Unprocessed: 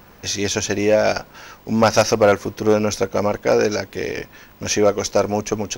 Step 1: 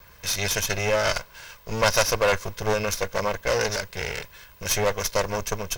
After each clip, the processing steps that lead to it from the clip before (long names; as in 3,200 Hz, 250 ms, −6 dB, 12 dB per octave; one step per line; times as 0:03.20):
lower of the sound and its delayed copy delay 1.9 ms
parametric band 370 Hz −10 dB 2.2 octaves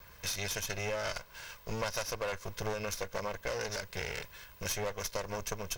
downward compressor 5 to 1, threshold −29 dBFS, peak gain reduction 12.5 dB
level −4 dB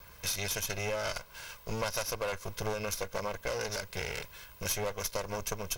parametric band 11,000 Hz +6.5 dB 0.44 octaves
notch filter 1,800 Hz, Q 9.2
level +1.5 dB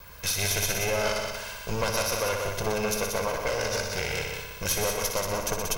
echo machine with several playback heads 61 ms, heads all three, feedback 48%, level −8 dB
level +5 dB